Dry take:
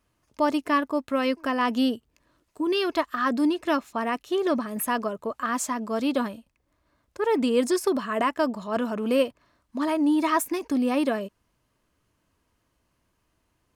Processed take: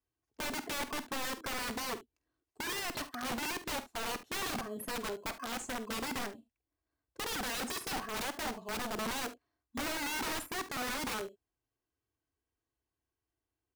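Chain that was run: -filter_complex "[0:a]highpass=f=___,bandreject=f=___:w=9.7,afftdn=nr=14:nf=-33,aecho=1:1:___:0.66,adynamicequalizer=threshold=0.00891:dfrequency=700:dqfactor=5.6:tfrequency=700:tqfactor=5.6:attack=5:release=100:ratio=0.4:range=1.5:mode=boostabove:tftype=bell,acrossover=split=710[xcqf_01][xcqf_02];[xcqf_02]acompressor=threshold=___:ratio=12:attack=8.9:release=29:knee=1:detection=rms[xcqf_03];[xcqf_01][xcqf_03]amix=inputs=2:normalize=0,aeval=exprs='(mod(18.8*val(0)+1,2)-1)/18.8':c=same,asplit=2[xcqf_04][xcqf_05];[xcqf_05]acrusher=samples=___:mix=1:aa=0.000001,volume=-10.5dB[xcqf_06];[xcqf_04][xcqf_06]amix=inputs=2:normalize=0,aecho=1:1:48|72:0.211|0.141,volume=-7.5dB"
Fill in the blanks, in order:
46, 1200, 2.6, -36dB, 12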